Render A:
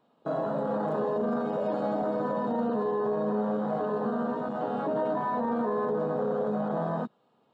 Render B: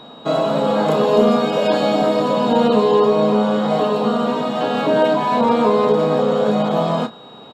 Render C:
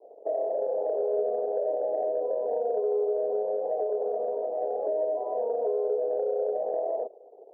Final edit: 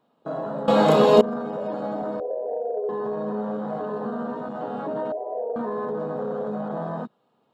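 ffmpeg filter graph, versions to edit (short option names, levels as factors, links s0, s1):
-filter_complex "[2:a]asplit=2[s0][s1];[0:a]asplit=4[s2][s3][s4][s5];[s2]atrim=end=0.682[s6];[1:a]atrim=start=0.678:end=1.212[s7];[s3]atrim=start=1.208:end=2.202[s8];[s0]atrim=start=2.198:end=2.892[s9];[s4]atrim=start=2.888:end=5.122[s10];[s1]atrim=start=5.118:end=5.562[s11];[s5]atrim=start=5.558[s12];[s6][s7]acrossfade=d=0.004:c1=hsin:c2=hsin[s13];[s13][s8]acrossfade=d=0.004:c1=hsin:c2=hsin[s14];[s14][s9]acrossfade=d=0.004:c1=hsin:c2=hsin[s15];[s15][s10]acrossfade=d=0.004:c1=hsin:c2=hsin[s16];[s16][s11]acrossfade=d=0.004:c1=hsin:c2=hsin[s17];[s17][s12]acrossfade=d=0.004:c1=hsin:c2=hsin"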